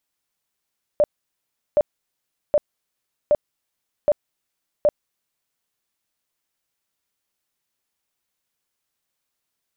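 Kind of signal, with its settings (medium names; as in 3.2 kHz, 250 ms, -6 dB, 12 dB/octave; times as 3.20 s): tone bursts 593 Hz, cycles 23, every 0.77 s, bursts 6, -12 dBFS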